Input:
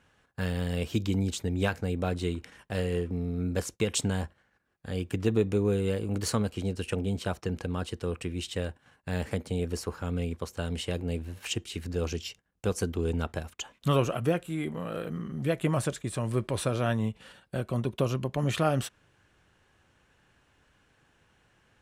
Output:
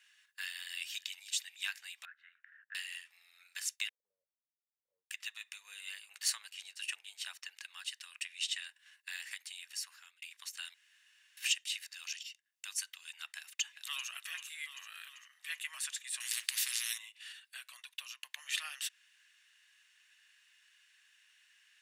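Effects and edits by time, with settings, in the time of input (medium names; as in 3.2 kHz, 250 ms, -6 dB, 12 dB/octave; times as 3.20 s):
0.56–1.13 s: echo throw 360 ms, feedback 45%, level -18 dB
2.05–2.75 s: Butterworth band-pass 1.5 kHz, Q 3.8
3.89–5.11 s: steep low-pass 570 Hz 96 dB/octave
5.68–7.62 s: peaking EQ 330 Hz +8 dB 2.6 oct
8.24–8.67 s: low-pass 10 kHz
9.43–10.22 s: fade out equal-power
10.74–11.37 s: room tone
12.23–12.76 s: fade in, from -15 dB
13.37–14.09 s: echo throw 390 ms, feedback 60%, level -10.5 dB
14.85–15.64 s: three bands expanded up and down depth 40%
16.20–16.98 s: spectrum-flattening compressor 10:1
17.69–18.23 s: fade out, to -8.5 dB
whole clip: compression 1.5:1, threshold -37 dBFS; inverse Chebyshev high-pass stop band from 320 Hz, stop band 80 dB; comb 1.1 ms, depth 31%; trim +5 dB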